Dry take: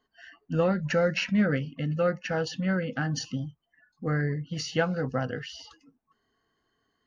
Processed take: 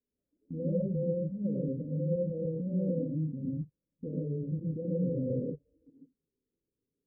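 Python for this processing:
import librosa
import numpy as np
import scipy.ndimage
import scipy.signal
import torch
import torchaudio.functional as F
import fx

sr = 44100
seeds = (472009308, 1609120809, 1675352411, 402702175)

y = scipy.signal.sosfilt(scipy.signal.cheby1(10, 1.0, 590.0, 'lowpass', fs=sr, output='sos'), x)
y = fx.level_steps(y, sr, step_db=19)
y = fx.rev_gated(y, sr, seeds[0], gate_ms=170, shape='rising', drr_db=-4.0)
y = F.gain(torch.from_numpy(y), 1.0).numpy()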